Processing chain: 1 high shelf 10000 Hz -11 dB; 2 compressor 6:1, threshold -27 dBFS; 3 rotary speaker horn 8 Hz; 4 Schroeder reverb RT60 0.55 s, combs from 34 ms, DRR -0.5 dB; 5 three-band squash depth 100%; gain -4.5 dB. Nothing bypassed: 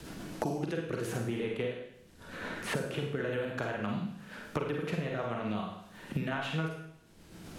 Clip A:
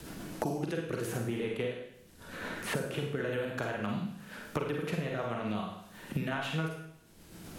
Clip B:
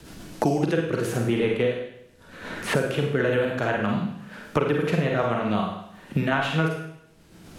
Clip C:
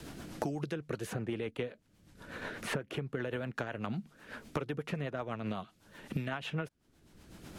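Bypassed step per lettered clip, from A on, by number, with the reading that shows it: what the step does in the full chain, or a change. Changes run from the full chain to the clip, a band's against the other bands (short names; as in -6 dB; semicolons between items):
1, 8 kHz band +2.0 dB; 2, mean gain reduction 9.0 dB; 4, crest factor change +1.5 dB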